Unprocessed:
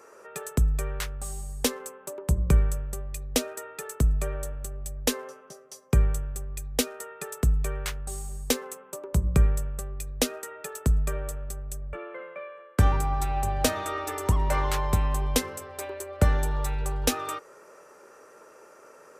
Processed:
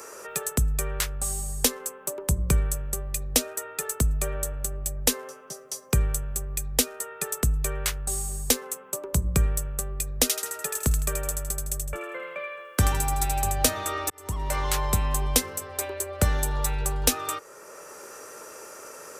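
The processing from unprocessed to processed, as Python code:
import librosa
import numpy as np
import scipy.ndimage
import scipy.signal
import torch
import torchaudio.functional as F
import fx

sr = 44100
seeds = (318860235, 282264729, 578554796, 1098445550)

y = fx.echo_wet_highpass(x, sr, ms=80, feedback_pct=34, hz=1600.0, wet_db=-3.5, at=(10.25, 13.55), fade=0.02)
y = fx.edit(y, sr, fx.fade_in_span(start_s=14.1, length_s=0.73), tone=tone)
y = fx.high_shelf(y, sr, hz=3800.0, db=11.0)
y = fx.band_squash(y, sr, depth_pct=40)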